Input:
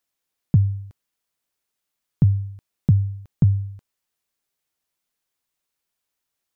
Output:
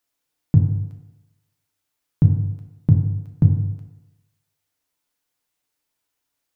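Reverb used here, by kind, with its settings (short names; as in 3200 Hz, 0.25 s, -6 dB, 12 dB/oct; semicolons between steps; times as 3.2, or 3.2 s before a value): FDN reverb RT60 1 s, low-frequency decay 0.9×, high-frequency decay 0.55×, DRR 2.5 dB; gain +1 dB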